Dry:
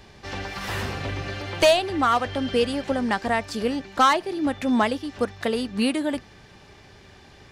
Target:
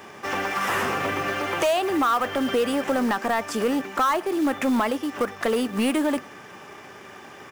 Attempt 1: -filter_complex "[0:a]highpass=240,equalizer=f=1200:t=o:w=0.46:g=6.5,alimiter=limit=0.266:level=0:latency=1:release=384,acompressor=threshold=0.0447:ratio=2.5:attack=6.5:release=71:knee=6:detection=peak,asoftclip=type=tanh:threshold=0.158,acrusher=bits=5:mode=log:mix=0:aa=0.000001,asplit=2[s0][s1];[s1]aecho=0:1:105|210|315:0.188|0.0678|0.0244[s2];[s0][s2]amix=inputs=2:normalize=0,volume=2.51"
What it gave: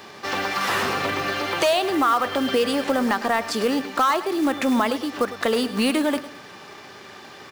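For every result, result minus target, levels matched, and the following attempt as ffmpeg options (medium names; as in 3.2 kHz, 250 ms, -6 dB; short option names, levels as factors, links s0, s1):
echo-to-direct +10.5 dB; saturation: distortion -10 dB; 4 kHz band +4.0 dB
-filter_complex "[0:a]highpass=240,equalizer=f=1200:t=o:w=0.46:g=6.5,alimiter=limit=0.266:level=0:latency=1:release=384,acompressor=threshold=0.0447:ratio=2.5:attack=6.5:release=71:knee=6:detection=peak,asoftclip=type=tanh:threshold=0.158,acrusher=bits=5:mode=log:mix=0:aa=0.000001,asplit=2[s0][s1];[s1]aecho=0:1:105|210:0.0562|0.0202[s2];[s0][s2]amix=inputs=2:normalize=0,volume=2.51"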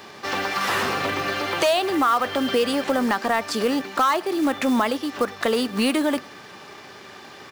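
saturation: distortion -10 dB; 4 kHz band +4.0 dB
-filter_complex "[0:a]highpass=240,equalizer=f=1200:t=o:w=0.46:g=6.5,alimiter=limit=0.266:level=0:latency=1:release=384,acompressor=threshold=0.0447:ratio=2.5:attack=6.5:release=71:knee=6:detection=peak,asoftclip=type=tanh:threshold=0.0708,acrusher=bits=5:mode=log:mix=0:aa=0.000001,asplit=2[s0][s1];[s1]aecho=0:1:105|210:0.0562|0.0202[s2];[s0][s2]amix=inputs=2:normalize=0,volume=2.51"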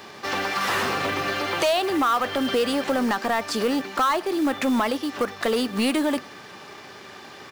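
4 kHz band +4.0 dB
-filter_complex "[0:a]highpass=240,equalizer=f=1200:t=o:w=0.46:g=6.5,alimiter=limit=0.266:level=0:latency=1:release=384,acompressor=threshold=0.0447:ratio=2.5:attack=6.5:release=71:knee=6:detection=peak,equalizer=f=4200:t=o:w=0.49:g=-13.5,asoftclip=type=tanh:threshold=0.0708,acrusher=bits=5:mode=log:mix=0:aa=0.000001,asplit=2[s0][s1];[s1]aecho=0:1:105|210:0.0562|0.0202[s2];[s0][s2]amix=inputs=2:normalize=0,volume=2.51"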